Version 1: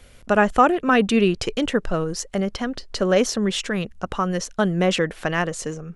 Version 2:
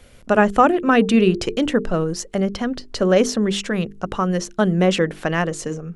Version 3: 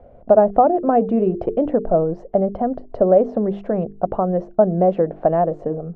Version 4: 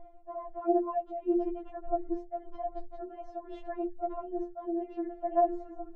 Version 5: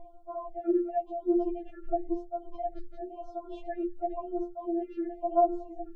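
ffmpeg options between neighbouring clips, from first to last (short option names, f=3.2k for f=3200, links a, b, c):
-af "equalizer=f=240:t=o:w=2.7:g=4.5,bandreject=f=50:t=h:w=6,bandreject=f=100:t=h:w=6,bandreject=f=150:t=h:w=6,bandreject=f=200:t=h:w=6,bandreject=f=250:t=h:w=6,bandreject=f=300:t=h:w=6,bandreject=f=350:t=h:w=6,bandreject=f=400:t=h:w=6,bandreject=f=450:t=h:w=6"
-af "acompressor=threshold=-20dB:ratio=2,lowpass=f=680:t=q:w=4.9"
-af "areverse,acompressor=threshold=-24dB:ratio=6,areverse,afftfilt=real='re*4*eq(mod(b,16),0)':imag='im*4*eq(mod(b,16),0)':win_size=2048:overlap=0.75,volume=-1.5dB"
-af "bandreject=f=194.2:t=h:w=4,bandreject=f=388.4:t=h:w=4,bandreject=f=582.6:t=h:w=4,bandreject=f=776.8:t=h:w=4,bandreject=f=971:t=h:w=4,bandreject=f=1.1652k:t=h:w=4,bandreject=f=1.3594k:t=h:w=4,bandreject=f=1.5536k:t=h:w=4,bandreject=f=1.7478k:t=h:w=4,afftfilt=real='re*(1-between(b*sr/1024,870*pow(2300/870,0.5+0.5*sin(2*PI*0.96*pts/sr))/1.41,870*pow(2300/870,0.5+0.5*sin(2*PI*0.96*pts/sr))*1.41))':imag='im*(1-between(b*sr/1024,870*pow(2300/870,0.5+0.5*sin(2*PI*0.96*pts/sr))/1.41,870*pow(2300/870,0.5+0.5*sin(2*PI*0.96*pts/sr))*1.41))':win_size=1024:overlap=0.75,volume=2dB"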